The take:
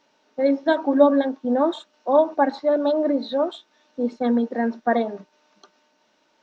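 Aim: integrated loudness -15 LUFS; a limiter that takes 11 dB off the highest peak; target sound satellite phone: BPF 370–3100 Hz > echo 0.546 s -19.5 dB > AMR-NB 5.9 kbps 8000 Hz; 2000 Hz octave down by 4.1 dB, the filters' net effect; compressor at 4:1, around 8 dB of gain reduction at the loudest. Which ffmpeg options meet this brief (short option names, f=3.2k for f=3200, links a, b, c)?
-af "equalizer=f=2k:t=o:g=-5,acompressor=threshold=-19dB:ratio=4,alimiter=limit=-22dB:level=0:latency=1,highpass=370,lowpass=3.1k,aecho=1:1:546:0.106,volume=19.5dB" -ar 8000 -c:a libopencore_amrnb -b:a 5900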